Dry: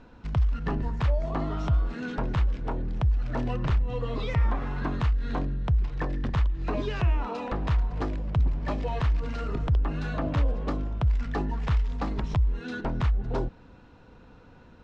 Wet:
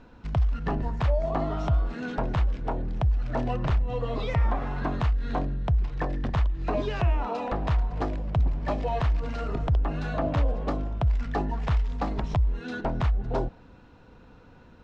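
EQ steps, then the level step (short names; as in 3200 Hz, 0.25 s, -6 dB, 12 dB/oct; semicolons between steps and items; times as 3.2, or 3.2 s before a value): dynamic EQ 690 Hz, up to +7 dB, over -49 dBFS, Q 2.2; 0.0 dB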